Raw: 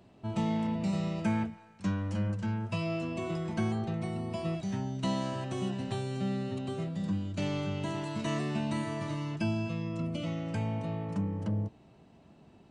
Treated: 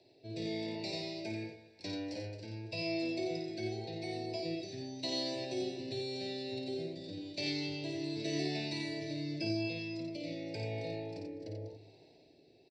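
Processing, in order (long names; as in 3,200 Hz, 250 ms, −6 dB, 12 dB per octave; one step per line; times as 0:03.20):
meter weighting curve D
rotating-speaker cabinet horn 0.9 Hz
high-shelf EQ 7,000 Hz −4.5 dB
phaser with its sweep stopped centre 490 Hz, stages 4
multi-tap delay 54/88/240 ms −6/−5.5/−17.5 dB
convolution reverb RT60 0.35 s, pre-delay 3 ms, DRR 23.5 dB
level −8.5 dB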